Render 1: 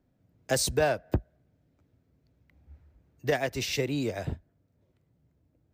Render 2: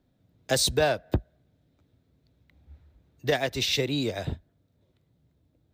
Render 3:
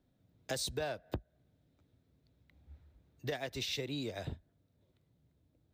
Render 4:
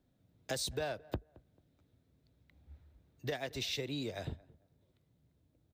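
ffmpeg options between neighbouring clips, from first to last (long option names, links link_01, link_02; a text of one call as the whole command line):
ffmpeg -i in.wav -af "equalizer=frequency=3700:width=3.2:gain=10,volume=1.5dB" out.wav
ffmpeg -i in.wav -af "acompressor=threshold=-33dB:ratio=2.5,volume=-5dB" out.wav
ffmpeg -i in.wav -filter_complex "[0:a]asplit=2[link_01][link_02];[link_02]adelay=221,lowpass=frequency=1300:poles=1,volume=-22dB,asplit=2[link_03][link_04];[link_04]adelay=221,lowpass=frequency=1300:poles=1,volume=0.33[link_05];[link_01][link_03][link_05]amix=inputs=3:normalize=0" out.wav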